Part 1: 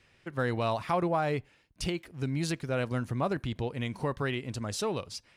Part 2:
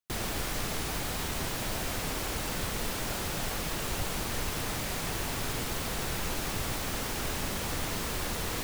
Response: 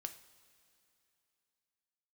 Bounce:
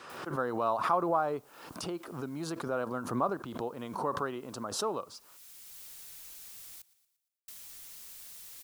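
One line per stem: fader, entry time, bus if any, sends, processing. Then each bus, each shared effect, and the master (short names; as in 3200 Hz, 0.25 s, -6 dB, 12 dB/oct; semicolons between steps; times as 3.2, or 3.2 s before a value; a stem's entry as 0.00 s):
-3.0 dB, 0.00 s, send -18.5 dB, no echo send, HPF 270 Hz 12 dB/oct; resonant high shelf 1600 Hz -8.5 dB, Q 3; backwards sustainer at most 68 dB/s
-15.5 dB, 0.00 s, muted 6.82–7.48, no send, echo send -22.5 dB, pre-emphasis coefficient 0.9; auto duck -16 dB, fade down 0.25 s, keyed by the first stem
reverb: on, pre-delay 3 ms
echo: feedback echo 0.116 s, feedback 45%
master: mismatched tape noise reduction encoder only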